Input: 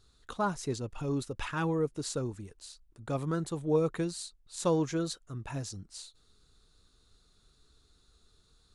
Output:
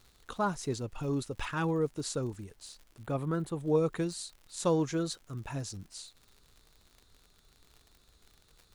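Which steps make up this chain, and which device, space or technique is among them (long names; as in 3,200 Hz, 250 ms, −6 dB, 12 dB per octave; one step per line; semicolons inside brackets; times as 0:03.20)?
vinyl LP (surface crackle 82 per second −45 dBFS; pink noise bed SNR 38 dB)
0:03.03–0:03.60: parametric band 5,800 Hz −9 dB 1.3 octaves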